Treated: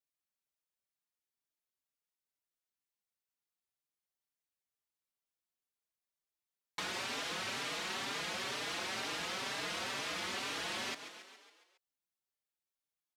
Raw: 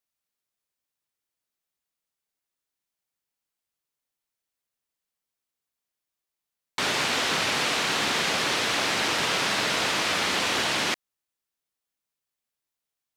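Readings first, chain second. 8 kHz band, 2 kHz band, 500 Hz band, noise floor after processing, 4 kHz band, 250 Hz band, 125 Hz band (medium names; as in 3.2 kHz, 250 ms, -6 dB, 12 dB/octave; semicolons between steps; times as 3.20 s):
-14.0 dB, -14.0 dB, -14.0 dB, under -85 dBFS, -14.0 dB, -14.0 dB, -14.0 dB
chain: frequency-shifting echo 138 ms, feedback 58%, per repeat +30 Hz, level -14.5 dB; compression, threshold -27 dBFS, peak gain reduction 5.5 dB; endless flanger 4.6 ms +2.1 Hz; trim -6 dB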